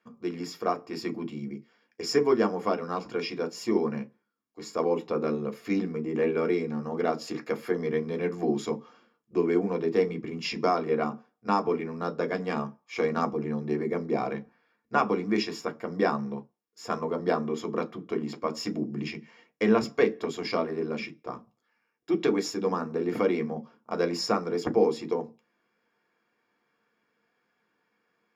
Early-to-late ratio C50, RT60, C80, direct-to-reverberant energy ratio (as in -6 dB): 26.0 dB, not exponential, 36.0 dB, 5.0 dB